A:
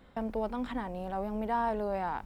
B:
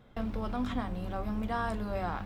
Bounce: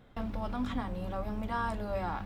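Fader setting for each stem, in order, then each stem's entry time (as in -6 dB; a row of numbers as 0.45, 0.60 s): -8.5, -1.5 dB; 0.00, 0.00 s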